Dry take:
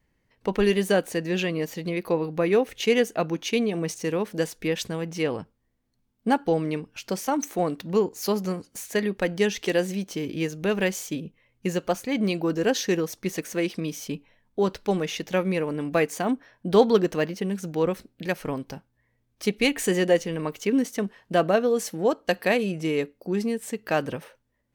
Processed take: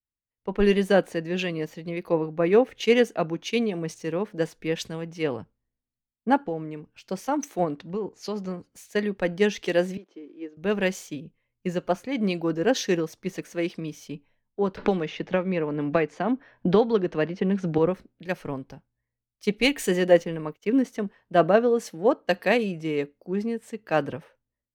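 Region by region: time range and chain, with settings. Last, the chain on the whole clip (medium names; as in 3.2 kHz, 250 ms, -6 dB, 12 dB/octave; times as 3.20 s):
6.42–7.01 s: compression 2:1, threshold -27 dBFS + decimation joined by straight lines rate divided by 4×
7.64–8.59 s: low-pass 7.6 kHz + compression 12:1, threshold -22 dBFS
9.97–10.57 s: block-companded coder 5-bit + ladder high-pass 280 Hz, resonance 50% + distance through air 130 m
14.77–17.78 s: low-pass 4.6 kHz + three bands compressed up and down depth 100%
19.62–20.82 s: expander -33 dBFS + peaking EQ 15 kHz +12 dB 0.29 oct
whole clip: low-pass 3.2 kHz 6 dB/octave; level rider gain up to 5 dB; three bands expanded up and down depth 70%; trim -5 dB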